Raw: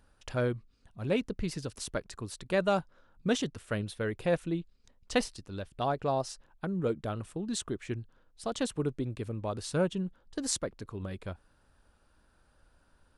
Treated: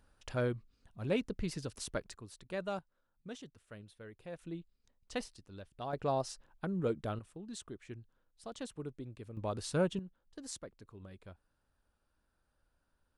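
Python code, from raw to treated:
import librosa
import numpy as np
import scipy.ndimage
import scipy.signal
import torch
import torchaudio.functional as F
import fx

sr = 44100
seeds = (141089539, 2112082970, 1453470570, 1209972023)

y = fx.gain(x, sr, db=fx.steps((0.0, -3.5), (2.13, -11.0), (2.79, -18.0), (4.39, -10.5), (5.93, -3.0), (7.19, -11.5), (9.37, -2.5), (9.99, -13.0)))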